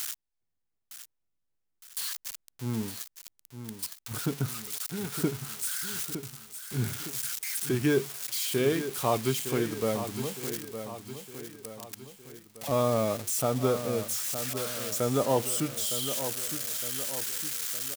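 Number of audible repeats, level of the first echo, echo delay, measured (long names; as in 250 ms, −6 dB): 4, −10.0 dB, 911 ms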